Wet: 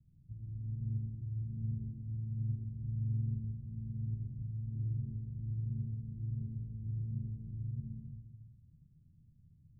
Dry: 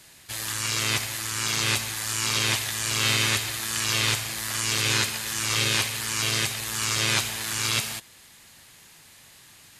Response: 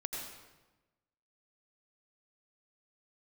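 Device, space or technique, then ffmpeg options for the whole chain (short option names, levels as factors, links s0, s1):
club heard from the street: -filter_complex "[0:a]alimiter=limit=0.178:level=0:latency=1:release=126,lowpass=f=160:w=0.5412,lowpass=f=160:w=1.3066[s0];[1:a]atrim=start_sample=2205[s1];[s0][s1]afir=irnorm=-1:irlink=0,volume=1.33"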